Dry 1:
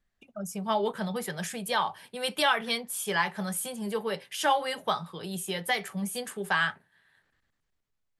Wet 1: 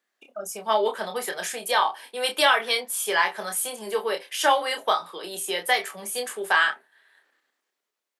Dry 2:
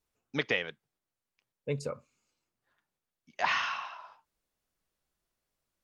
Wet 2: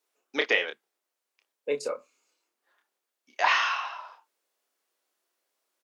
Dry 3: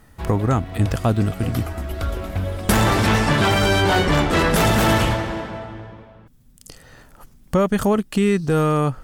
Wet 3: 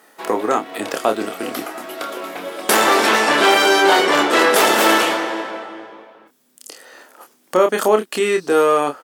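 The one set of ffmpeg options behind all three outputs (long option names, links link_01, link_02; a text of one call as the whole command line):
ffmpeg -i in.wav -filter_complex "[0:a]highpass=frequency=330:width=0.5412,highpass=frequency=330:width=1.3066,asplit=2[link_01][link_02];[link_02]adelay=28,volume=-6dB[link_03];[link_01][link_03]amix=inputs=2:normalize=0,volume=5dB" out.wav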